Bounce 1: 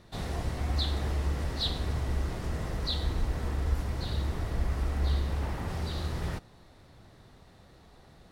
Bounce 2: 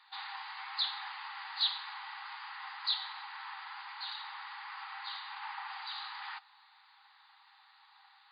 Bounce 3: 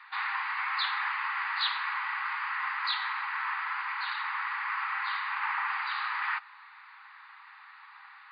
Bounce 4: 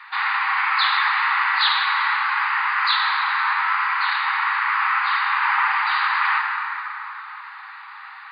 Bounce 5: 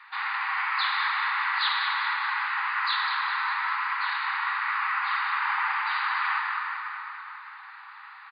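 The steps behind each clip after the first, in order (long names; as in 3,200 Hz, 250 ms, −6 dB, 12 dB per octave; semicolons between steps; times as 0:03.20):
brick-wall band-pass 770–4,900 Hz; level +1.5 dB
flat-topped bell 1,600 Hz +15.5 dB; level −1.5 dB
dense smooth reverb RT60 3.7 s, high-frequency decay 0.55×, DRR 0 dB; level +9 dB
repeating echo 203 ms, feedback 57%, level −8 dB; level −8 dB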